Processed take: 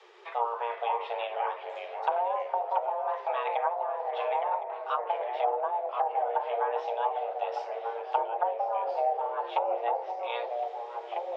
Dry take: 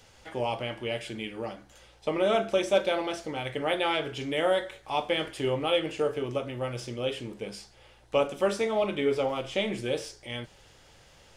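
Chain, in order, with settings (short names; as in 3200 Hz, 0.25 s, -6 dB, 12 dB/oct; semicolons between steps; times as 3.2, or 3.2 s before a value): treble ducked by the level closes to 330 Hz, closed at -24 dBFS; LPF 2600 Hz 12 dB/oct; echoes that change speed 0.429 s, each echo -2 st, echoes 2, each echo -6 dB; frequency shift +350 Hz; on a send: echo with dull and thin repeats by turns 0.532 s, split 890 Hz, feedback 56%, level -12 dB; on the sum: gain +2.5 dB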